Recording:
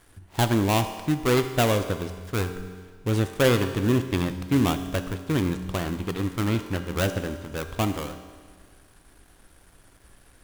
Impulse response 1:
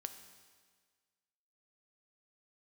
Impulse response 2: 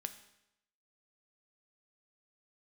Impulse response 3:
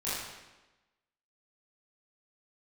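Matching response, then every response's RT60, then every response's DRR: 1; 1.6, 0.85, 1.1 seconds; 8.0, 8.5, −11.5 decibels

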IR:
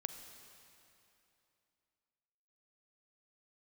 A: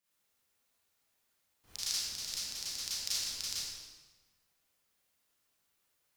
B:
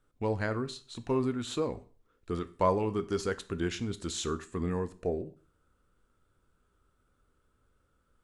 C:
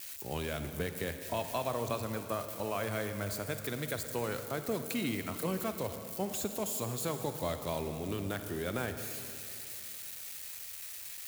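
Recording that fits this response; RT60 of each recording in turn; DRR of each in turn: C; 1.3, 0.40, 2.9 seconds; −11.0, 11.5, 7.5 decibels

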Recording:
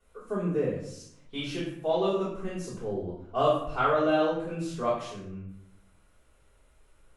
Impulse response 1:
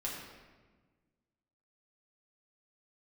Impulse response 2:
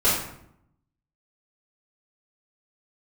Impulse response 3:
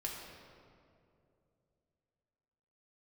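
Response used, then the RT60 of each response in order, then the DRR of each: 2; 1.4, 0.75, 2.6 seconds; −4.5, −10.0, −2.5 decibels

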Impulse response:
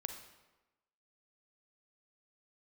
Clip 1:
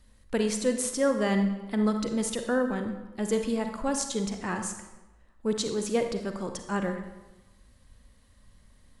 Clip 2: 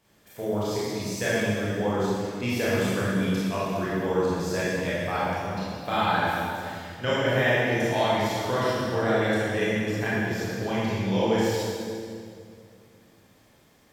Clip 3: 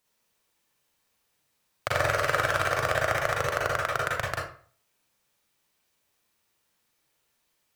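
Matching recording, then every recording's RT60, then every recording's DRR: 1; 1.1, 2.3, 0.45 seconds; 6.0, −9.5, −3.5 decibels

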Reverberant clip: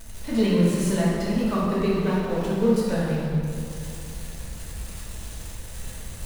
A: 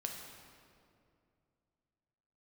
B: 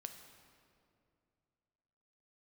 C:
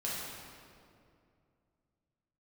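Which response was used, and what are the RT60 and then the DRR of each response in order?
C; 2.4, 2.5, 2.4 seconds; 1.0, 6.0, −7.5 decibels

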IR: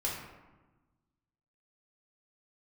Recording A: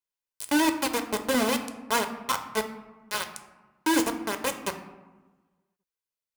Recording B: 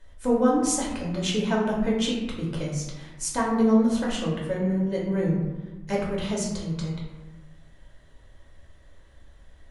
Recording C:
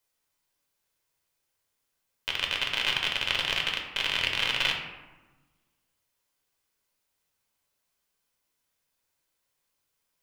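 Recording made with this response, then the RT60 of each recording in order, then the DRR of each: B; 1.2, 1.2, 1.2 seconds; 6.5, −4.5, 1.0 decibels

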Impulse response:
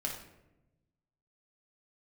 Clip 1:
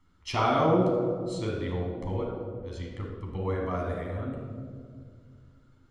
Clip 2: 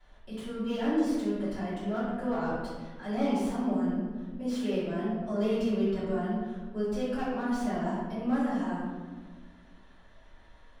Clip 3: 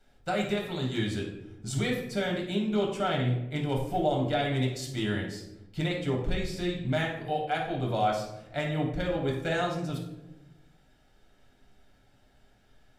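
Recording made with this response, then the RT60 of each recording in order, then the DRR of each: 3; 2.0, 1.4, 0.95 seconds; −2.0, −13.5, −1.5 decibels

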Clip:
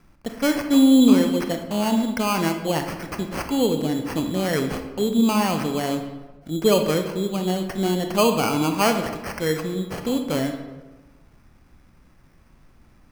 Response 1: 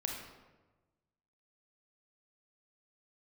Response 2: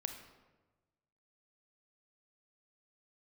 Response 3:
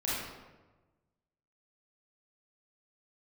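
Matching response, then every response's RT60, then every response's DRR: 2; 1.2, 1.2, 1.2 seconds; 0.0, 5.5, −9.0 decibels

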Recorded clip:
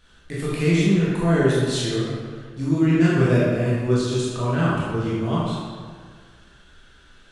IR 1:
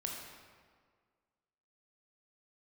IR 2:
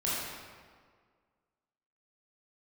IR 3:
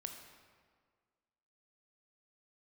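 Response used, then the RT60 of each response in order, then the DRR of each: 2; 1.8, 1.8, 1.8 seconds; −1.0, −8.5, 4.0 decibels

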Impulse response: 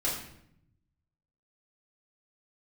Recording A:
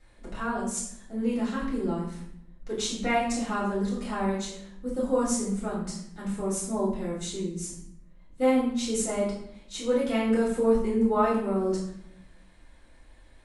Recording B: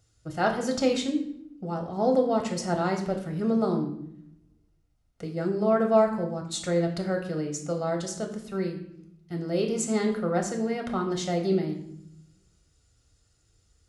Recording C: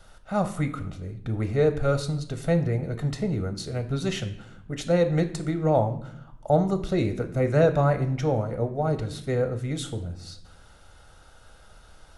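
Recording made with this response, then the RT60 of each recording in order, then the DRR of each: A; 0.70, 0.70, 0.75 seconds; −7.5, 2.5, 8.0 decibels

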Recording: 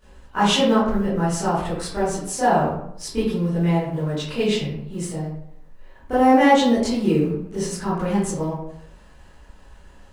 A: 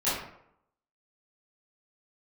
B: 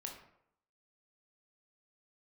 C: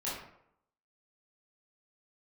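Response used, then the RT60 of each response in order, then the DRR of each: A; 0.75, 0.75, 0.75 seconds; −13.5, 1.0, −9.0 decibels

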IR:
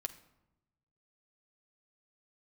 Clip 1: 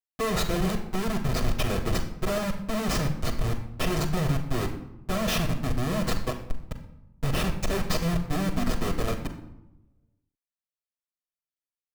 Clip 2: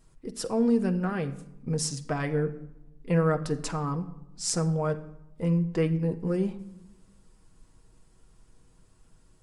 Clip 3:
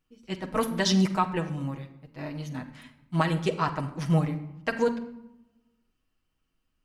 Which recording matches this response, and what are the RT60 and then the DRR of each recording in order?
2; 0.90, 0.90, 0.90 seconds; −8.5, 4.5, 0.5 decibels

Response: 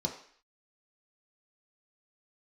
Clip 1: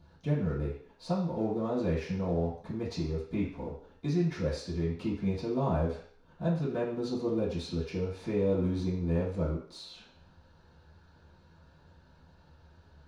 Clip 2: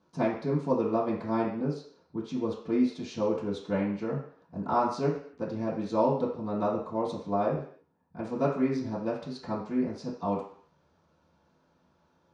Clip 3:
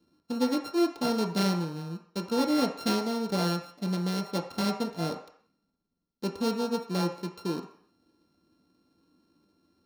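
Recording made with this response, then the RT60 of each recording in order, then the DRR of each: 3; 0.55, 0.55, 0.55 seconds; −14.0, −10.0, 0.0 decibels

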